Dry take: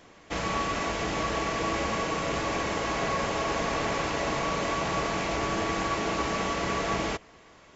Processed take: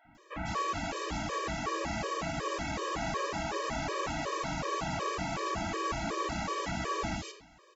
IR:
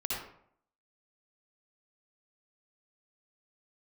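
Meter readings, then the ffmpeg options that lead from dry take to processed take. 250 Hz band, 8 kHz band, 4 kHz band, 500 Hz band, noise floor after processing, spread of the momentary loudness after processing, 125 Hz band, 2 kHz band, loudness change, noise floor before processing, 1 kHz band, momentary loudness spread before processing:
-5.5 dB, n/a, -6.0 dB, -6.5 dB, -59 dBFS, 2 LU, -4.0 dB, -6.5 dB, -5.5 dB, -54 dBFS, -4.5 dB, 1 LU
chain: -filter_complex "[0:a]acrossover=split=510|2500[a][b][c];[a]adelay=50[d];[c]adelay=150[e];[d][b][e]amix=inputs=3:normalize=0,asplit=2[f][g];[1:a]atrim=start_sample=2205[h];[g][h]afir=irnorm=-1:irlink=0,volume=-9.5dB[i];[f][i]amix=inputs=2:normalize=0,afftfilt=real='re*gt(sin(2*PI*2.7*pts/sr)*(1-2*mod(floor(b*sr/1024/320),2)),0)':imag='im*gt(sin(2*PI*2.7*pts/sr)*(1-2*mod(floor(b*sr/1024/320),2)),0)':win_size=1024:overlap=0.75,volume=-3.5dB"

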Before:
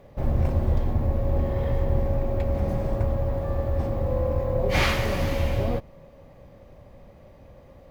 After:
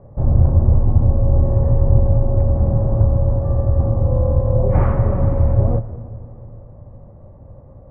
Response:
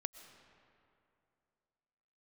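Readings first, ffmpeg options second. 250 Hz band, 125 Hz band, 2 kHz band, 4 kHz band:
+6.0 dB, +11.5 dB, under -10 dB, under -30 dB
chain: -filter_complex "[0:a]lowpass=f=1.2k:w=0.5412,lowpass=f=1.2k:w=1.3066,equalizer=f=110:w=1.3:g=8.5,asplit=2[a][b];[1:a]atrim=start_sample=2205,lowshelf=f=93:g=7[c];[b][c]afir=irnorm=-1:irlink=0,volume=5.5dB[d];[a][d]amix=inputs=2:normalize=0,volume=-5dB"

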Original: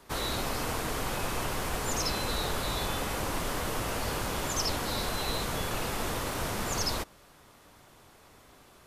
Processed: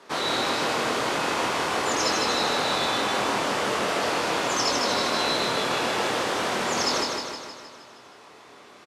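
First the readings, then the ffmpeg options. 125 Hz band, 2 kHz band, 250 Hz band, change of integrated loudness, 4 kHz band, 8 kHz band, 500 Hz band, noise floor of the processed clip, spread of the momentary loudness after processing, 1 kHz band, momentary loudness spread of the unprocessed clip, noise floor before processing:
-4.0 dB, +9.5 dB, +6.0 dB, +7.5 dB, +8.5 dB, +4.0 dB, +9.0 dB, -49 dBFS, 3 LU, +9.5 dB, 3 LU, -57 dBFS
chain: -filter_complex "[0:a]highpass=260,lowpass=5.9k,asplit=2[a][b];[b]adelay=25,volume=-5dB[c];[a][c]amix=inputs=2:normalize=0,aecho=1:1:156|312|468|624|780|936|1092|1248:0.668|0.388|0.225|0.13|0.0756|0.0439|0.0254|0.0148,volume=6dB"

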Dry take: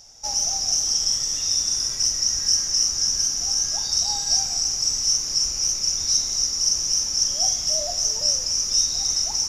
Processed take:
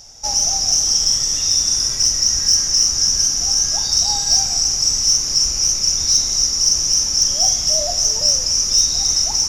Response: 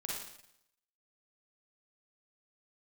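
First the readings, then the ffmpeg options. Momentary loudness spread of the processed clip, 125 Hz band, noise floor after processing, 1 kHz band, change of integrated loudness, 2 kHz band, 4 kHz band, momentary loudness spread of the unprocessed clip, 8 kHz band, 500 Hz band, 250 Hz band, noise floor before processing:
2 LU, +9.0 dB, -22 dBFS, +6.0 dB, +6.0 dB, +6.0 dB, +6.0 dB, 2 LU, +6.0 dB, +6.5 dB, +7.5 dB, -28 dBFS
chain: -af "lowshelf=f=220:g=3.5,acontrast=57"

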